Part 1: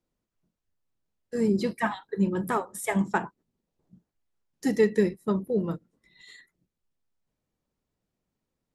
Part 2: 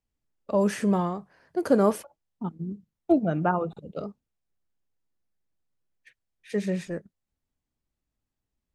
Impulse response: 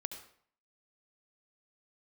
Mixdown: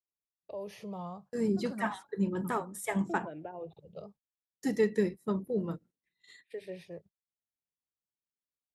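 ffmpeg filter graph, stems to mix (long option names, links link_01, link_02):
-filter_complex "[0:a]volume=-5.5dB,asplit=2[link_01][link_02];[1:a]alimiter=limit=-19.5dB:level=0:latency=1:release=190,asplit=2[link_03][link_04];[link_04]afreqshift=0.32[link_05];[link_03][link_05]amix=inputs=2:normalize=1,volume=-9dB[link_06];[link_02]apad=whole_len=385476[link_07];[link_06][link_07]sidechaincompress=threshold=-30dB:ratio=8:attack=16:release=185[link_08];[link_01][link_08]amix=inputs=2:normalize=0,agate=range=-21dB:threshold=-56dB:ratio=16:detection=peak,highpass=47"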